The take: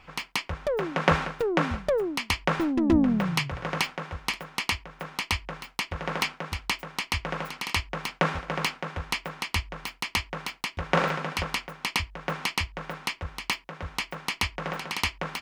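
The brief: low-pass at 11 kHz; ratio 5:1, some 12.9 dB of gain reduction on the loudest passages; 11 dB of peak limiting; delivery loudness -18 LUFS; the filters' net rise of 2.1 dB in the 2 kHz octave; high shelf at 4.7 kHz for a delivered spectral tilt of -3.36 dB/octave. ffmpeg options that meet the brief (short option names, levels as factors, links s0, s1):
-af "lowpass=11000,equalizer=f=2000:t=o:g=3.5,highshelf=f=4700:g=-5,acompressor=threshold=0.0251:ratio=5,volume=11.2,alimiter=limit=0.596:level=0:latency=1"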